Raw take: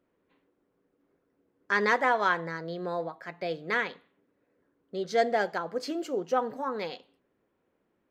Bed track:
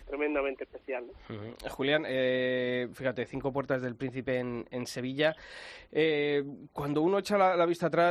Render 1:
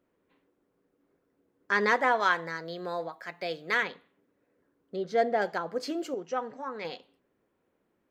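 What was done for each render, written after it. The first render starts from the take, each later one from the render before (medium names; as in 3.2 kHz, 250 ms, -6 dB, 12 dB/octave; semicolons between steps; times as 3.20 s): 2.20–3.83 s: tilt EQ +2 dB/octave; 4.96–5.42 s: treble shelf 3.1 kHz -11 dB; 6.14–6.85 s: rippled Chebyshev low-pass 7.8 kHz, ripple 6 dB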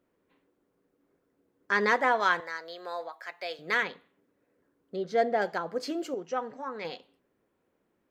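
2.40–3.59 s: high-pass 570 Hz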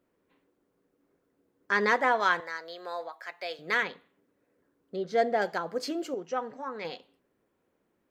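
5.13–5.89 s: treble shelf 4.3 kHz +4.5 dB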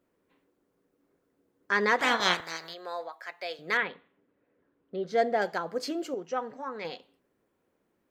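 1.98–2.73 s: spectral peaks clipped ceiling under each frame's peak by 24 dB; 3.77–5.03 s: low-pass 3.5 kHz 24 dB/octave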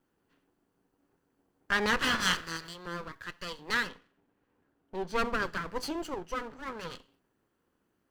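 comb filter that takes the minimum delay 0.66 ms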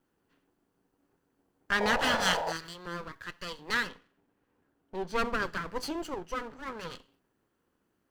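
1.80–2.53 s: painted sound noise 430–1000 Hz -33 dBFS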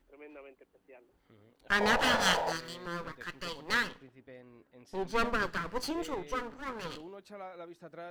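add bed track -20.5 dB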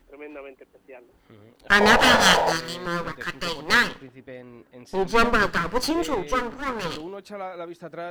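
trim +11 dB; peak limiter -1 dBFS, peak gain reduction 1 dB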